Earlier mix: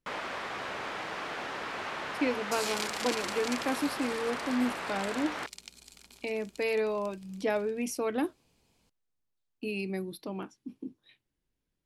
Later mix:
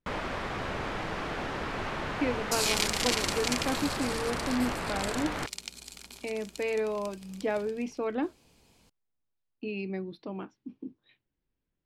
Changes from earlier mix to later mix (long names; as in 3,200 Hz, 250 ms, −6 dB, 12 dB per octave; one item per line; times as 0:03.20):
speech: add high-frequency loss of the air 190 metres
first sound: remove high-pass filter 630 Hz 6 dB per octave
second sound +7.5 dB